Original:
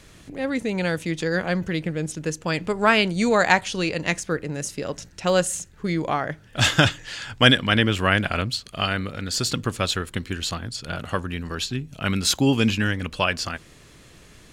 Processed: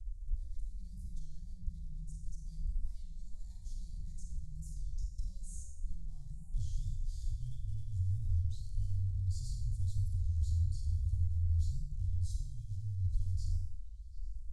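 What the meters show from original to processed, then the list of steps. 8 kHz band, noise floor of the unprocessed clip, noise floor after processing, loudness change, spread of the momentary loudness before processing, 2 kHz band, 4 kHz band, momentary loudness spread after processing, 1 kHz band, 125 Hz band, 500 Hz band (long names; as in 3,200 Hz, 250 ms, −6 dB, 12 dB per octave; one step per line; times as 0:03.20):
−26.0 dB, −50 dBFS, −47 dBFS, −16.5 dB, 12 LU, below −40 dB, −38.0 dB, 14 LU, below −40 dB, −8.5 dB, below −40 dB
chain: in parallel at −9 dB: fuzz pedal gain 36 dB, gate −41 dBFS
on the sum: high-shelf EQ 3,000 Hz −10 dB
on a send: echo through a band-pass that steps 106 ms, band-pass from 210 Hz, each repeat 0.7 octaves, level −2.5 dB
on the sum: harmonic and percussive parts rebalanced harmonic +6 dB
transistor ladder low-pass 4,500 Hz, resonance 25%
downward compressor 4 to 1, threshold −24 dBFS, peak gain reduction 11 dB
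inverse Chebyshev band-stop filter 220–2,900 Hz, stop band 70 dB
four-comb reverb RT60 0.74 s, combs from 33 ms, DRR 2 dB
wow of a warped record 33 1/3 rpm, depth 160 cents
level +16 dB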